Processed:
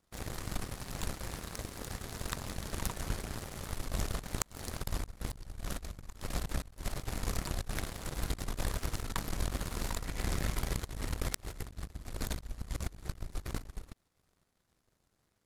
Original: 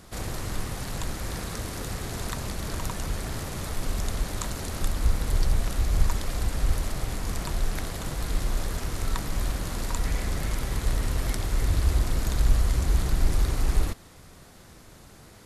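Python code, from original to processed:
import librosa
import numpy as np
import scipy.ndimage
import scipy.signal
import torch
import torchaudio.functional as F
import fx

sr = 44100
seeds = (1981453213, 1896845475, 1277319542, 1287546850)

y = fx.power_curve(x, sr, exponent=2.0)
y = fx.gate_flip(y, sr, shuts_db=-17.0, range_db=-27)
y = fx.over_compress(y, sr, threshold_db=-39.0, ratio=-0.5)
y = F.gain(torch.from_numpy(y), 5.0).numpy()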